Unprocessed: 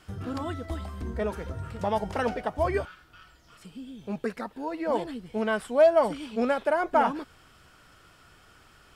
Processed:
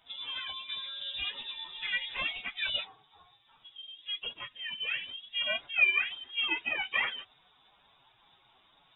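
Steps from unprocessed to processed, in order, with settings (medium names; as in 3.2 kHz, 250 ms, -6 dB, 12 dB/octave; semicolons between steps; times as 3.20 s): frequency-domain pitch shifter +12 st; frequency inversion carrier 3.7 kHz; trim -2.5 dB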